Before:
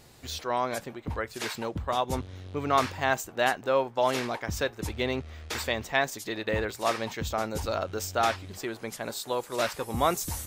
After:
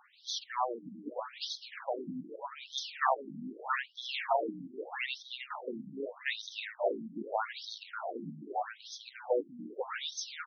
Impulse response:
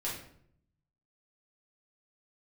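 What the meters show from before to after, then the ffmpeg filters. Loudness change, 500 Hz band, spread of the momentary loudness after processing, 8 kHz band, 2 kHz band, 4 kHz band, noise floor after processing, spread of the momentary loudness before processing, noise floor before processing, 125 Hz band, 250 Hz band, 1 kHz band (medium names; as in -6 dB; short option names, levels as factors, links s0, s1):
-7.5 dB, -8.0 dB, 11 LU, -10.5 dB, -7.5 dB, -4.0 dB, -58 dBFS, 9 LU, -50 dBFS, -19.0 dB, -8.0 dB, -7.0 dB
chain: -filter_complex "[0:a]aphaser=in_gain=1:out_gain=1:delay=2.5:decay=0.41:speed=0.76:type=sinusoidal,asplit=5[s0][s1][s2][s3][s4];[s1]adelay=314,afreqshift=63,volume=0.473[s5];[s2]adelay=628,afreqshift=126,volume=0.176[s6];[s3]adelay=942,afreqshift=189,volume=0.0646[s7];[s4]adelay=1256,afreqshift=252,volume=0.024[s8];[s0][s5][s6][s7][s8]amix=inputs=5:normalize=0,afftfilt=real='re*between(b*sr/1024,210*pow(4600/210,0.5+0.5*sin(2*PI*0.81*pts/sr))/1.41,210*pow(4600/210,0.5+0.5*sin(2*PI*0.81*pts/sr))*1.41)':imag='im*between(b*sr/1024,210*pow(4600/210,0.5+0.5*sin(2*PI*0.81*pts/sr))/1.41,210*pow(4600/210,0.5+0.5*sin(2*PI*0.81*pts/sr))*1.41)':win_size=1024:overlap=0.75"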